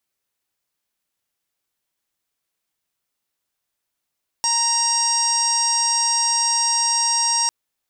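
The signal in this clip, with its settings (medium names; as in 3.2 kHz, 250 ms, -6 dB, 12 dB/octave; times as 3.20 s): steady additive tone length 3.05 s, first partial 934 Hz, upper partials -13.5/-14.5/-19/-7/4/-8.5/-14.5/-1 dB, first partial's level -23 dB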